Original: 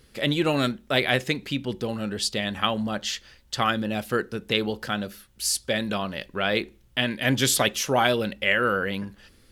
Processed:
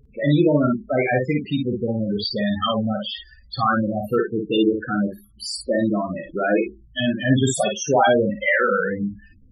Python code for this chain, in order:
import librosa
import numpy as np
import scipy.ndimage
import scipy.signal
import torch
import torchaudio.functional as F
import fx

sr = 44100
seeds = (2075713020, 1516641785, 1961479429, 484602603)

y = fx.peak_eq(x, sr, hz=320.0, db=10.0, octaves=0.27, at=(4.28, 6.57))
y = fx.quant_float(y, sr, bits=2)
y = fx.spec_topn(y, sr, count=8)
y = fx.room_early_taps(y, sr, ms=(34, 54), db=(-12.0, -4.5))
y = y * 10.0 ** (6.0 / 20.0)